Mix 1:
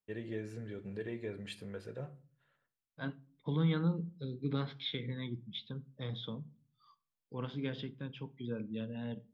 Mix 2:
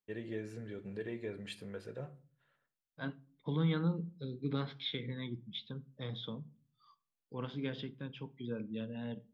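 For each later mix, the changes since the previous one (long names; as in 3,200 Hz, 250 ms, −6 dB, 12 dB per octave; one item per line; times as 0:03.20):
master: add parametric band 74 Hz −3.5 dB 1.7 octaves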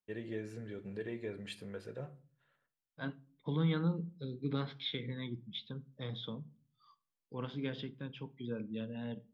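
nothing changed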